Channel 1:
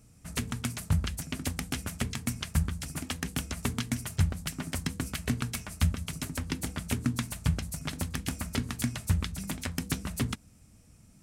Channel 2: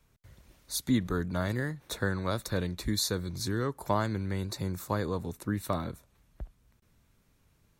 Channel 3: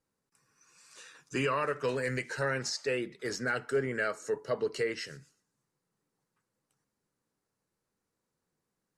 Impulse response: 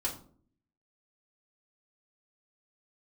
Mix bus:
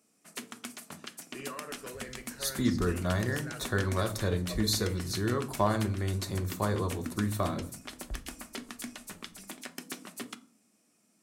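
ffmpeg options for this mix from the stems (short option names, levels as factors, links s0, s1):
-filter_complex "[0:a]highpass=f=240:w=0.5412,highpass=f=240:w=1.3066,volume=0.422,asplit=2[s0][s1];[s1]volume=0.282[s2];[1:a]adelay=1700,volume=0.631,asplit=2[s3][s4];[s4]volume=0.631[s5];[2:a]volume=0.158,asplit=2[s6][s7];[s7]volume=0.501[s8];[3:a]atrim=start_sample=2205[s9];[s2][s5][s8]amix=inputs=3:normalize=0[s10];[s10][s9]afir=irnorm=-1:irlink=0[s11];[s0][s3][s6][s11]amix=inputs=4:normalize=0"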